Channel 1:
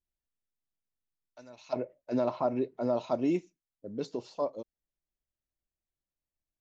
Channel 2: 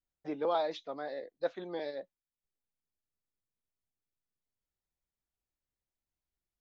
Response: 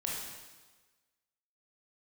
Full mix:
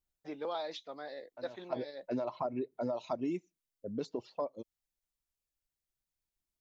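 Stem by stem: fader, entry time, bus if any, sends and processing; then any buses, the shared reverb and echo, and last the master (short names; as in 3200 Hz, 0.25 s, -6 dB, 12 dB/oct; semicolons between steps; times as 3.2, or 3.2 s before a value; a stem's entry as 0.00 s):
+2.0 dB, 0.00 s, no send, low-pass opened by the level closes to 1300 Hz, open at -28 dBFS; reverb removal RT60 1.5 s
-5.5 dB, 0.00 s, no send, high shelf 2400 Hz +9 dB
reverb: off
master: compressor 4:1, threshold -33 dBFS, peak gain reduction 9.5 dB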